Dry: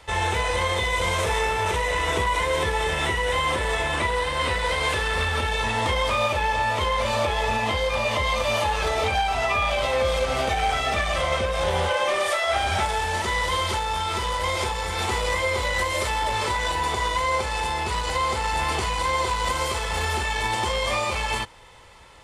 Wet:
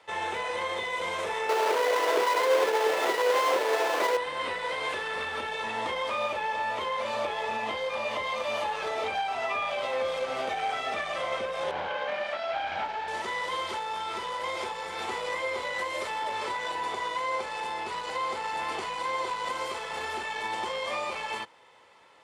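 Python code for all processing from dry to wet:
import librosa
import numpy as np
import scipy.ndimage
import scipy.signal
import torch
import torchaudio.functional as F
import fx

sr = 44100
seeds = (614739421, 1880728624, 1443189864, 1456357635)

y = fx.chain(x, sr, fx.halfwave_hold(),
    fx.highpass_res(hz=440.0, q=1.6), at=(1.49, 4.17))
y = fx.chain(y, sr, fx.lower_of_two(delay_ms=1.3),
    fx.lowpass(hz=3600.0, slope=12),
    fx.doppler_dist(depth_ms=0.18), at=(11.71, 13.08))
y = scipy.signal.sosfilt(scipy.signal.butter(2, 270.0, 'highpass', fs=sr, output='sos'), y)
y = fx.high_shelf(y, sr, hz=5500.0, db=-11.0)
y = F.gain(torch.from_numpy(y), -6.0).numpy()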